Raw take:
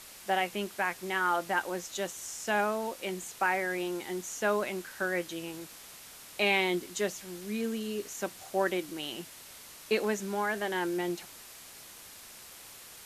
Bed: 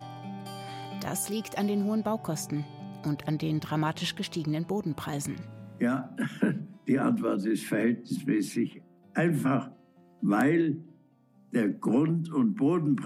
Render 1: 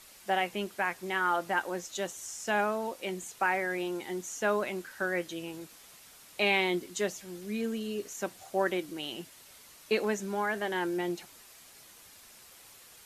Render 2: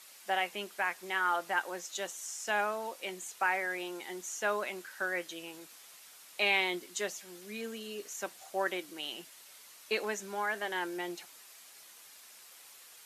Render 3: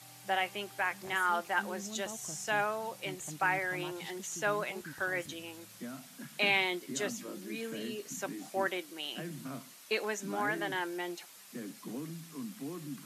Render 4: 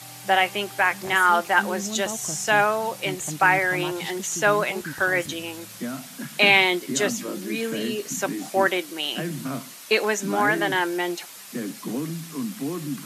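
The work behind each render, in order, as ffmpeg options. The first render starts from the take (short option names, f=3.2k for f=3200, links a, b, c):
-af "afftdn=nr=6:nf=-50"
-af "highpass=f=740:p=1"
-filter_complex "[1:a]volume=-16.5dB[a];[0:a][a]amix=inputs=2:normalize=0"
-af "volume=12dB"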